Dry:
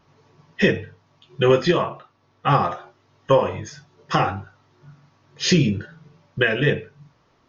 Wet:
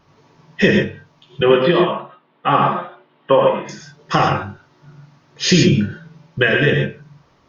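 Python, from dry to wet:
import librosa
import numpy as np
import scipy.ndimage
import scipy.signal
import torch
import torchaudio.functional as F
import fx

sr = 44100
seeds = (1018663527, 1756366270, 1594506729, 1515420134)

y = fx.ellip_bandpass(x, sr, low_hz=170.0, high_hz=3300.0, order=3, stop_db=40, at=(1.41, 3.69))
y = fx.rev_gated(y, sr, seeds[0], gate_ms=150, shape='rising', drr_db=2.5)
y = y * librosa.db_to_amplitude(3.5)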